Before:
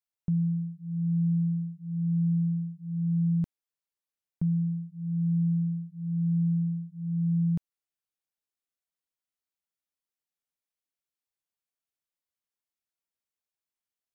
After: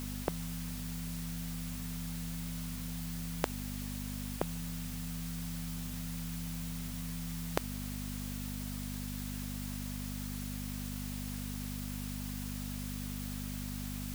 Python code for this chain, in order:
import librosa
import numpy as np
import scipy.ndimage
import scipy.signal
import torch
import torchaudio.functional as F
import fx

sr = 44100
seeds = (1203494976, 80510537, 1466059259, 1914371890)

y = fx.quant_dither(x, sr, seeds[0], bits=12, dither='triangular')
y = fx.add_hum(y, sr, base_hz=50, snr_db=13)
y = fx.spectral_comp(y, sr, ratio=10.0)
y = F.gain(torch.from_numpy(y), 11.0).numpy()